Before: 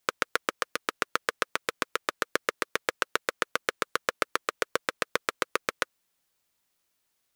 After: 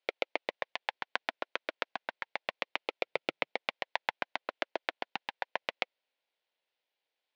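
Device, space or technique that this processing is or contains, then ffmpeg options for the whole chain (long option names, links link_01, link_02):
voice changer toy: -filter_complex "[0:a]aeval=exprs='val(0)*sin(2*PI*500*n/s+500*0.7/0.32*sin(2*PI*0.32*n/s))':channel_layout=same,highpass=480,equalizer=frequency=530:width_type=q:width=4:gain=5,equalizer=frequency=1200:width_type=q:width=4:gain=-10,equalizer=frequency=1700:width_type=q:width=4:gain=-3,lowpass=frequency=3900:width=0.5412,lowpass=frequency=3900:width=1.3066,asettb=1/sr,asplit=3[link_01][link_02][link_03];[link_01]atrim=end=3.044[link_04];[link_02]atrim=start=3.04:end=3.54,asetpts=PTS-STARTPTS,afade=type=in:duration=0.004:curve=qsin,afade=type=out:start_time=0.496:duration=0.004:curve=qsin,equalizer=frequency=150:width_type=o:width=1.4:gain=15[link_05];[link_03]atrim=start=3.536[link_06];[link_04][link_05]acrossfade=duration=0.004:curve1=hsin:curve2=qsin[link_07];[link_07][link_06]acrossfade=duration=0.004:curve1=qsin:curve2=hsin"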